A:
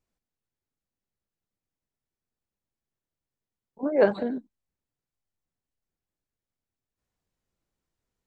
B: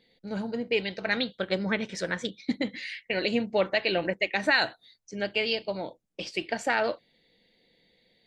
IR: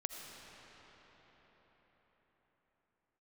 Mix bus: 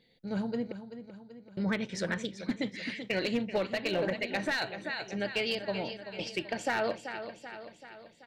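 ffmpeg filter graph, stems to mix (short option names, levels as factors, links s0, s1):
-filter_complex "[0:a]volume=0.237[s0];[1:a]volume=0.75,asplit=3[s1][s2][s3];[s1]atrim=end=0.72,asetpts=PTS-STARTPTS,afade=t=out:st=0.716:d=0.004:c=hsin[s4];[s2]atrim=start=0.72:end=1.57,asetpts=PTS-STARTPTS,volume=0[s5];[s3]atrim=start=1.57,asetpts=PTS-STARTPTS,afade=t=in:d=0.004:c=hsin[s6];[s4][s5][s6]concat=n=3:v=0:a=1,asplit=2[s7][s8];[s8]volume=0.266,aecho=0:1:384|768|1152|1536|1920|2304|2688|3072:1|0.55|0.303|0.166|0.0915|0.0503|0.0277|0.0152[s9];[s0][s7][s9]amix=inputs=3:normalize=0,equalizer=f=120:t=o:w=1.3:g=6.5,aeval=exprs='clip(val(0),-1,0.0841)':c=same,alimiter=limit=0.0891:level=0:latency=1:release=202"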